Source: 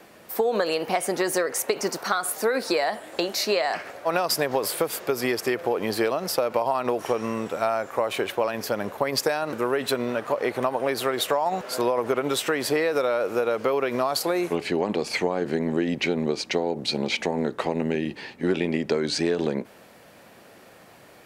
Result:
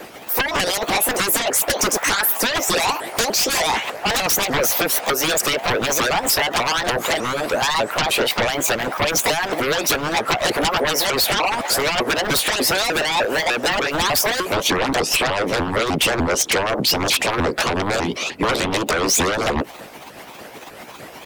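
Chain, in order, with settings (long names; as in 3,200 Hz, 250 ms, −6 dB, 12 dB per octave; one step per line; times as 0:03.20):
pitch shifter swept by a sawtooth +7 semitones, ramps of 300 ms
sine wavefolder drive 19 dB, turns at −7 dBFS
harmonic and percussive parts rebalanced harmonic −15 dB
level −5 dB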